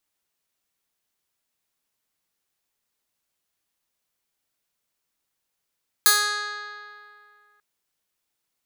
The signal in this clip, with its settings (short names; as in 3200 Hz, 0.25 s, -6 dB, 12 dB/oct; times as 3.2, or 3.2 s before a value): plucked string G#4, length 1.54 s, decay 2.38 s, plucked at 0.15, bright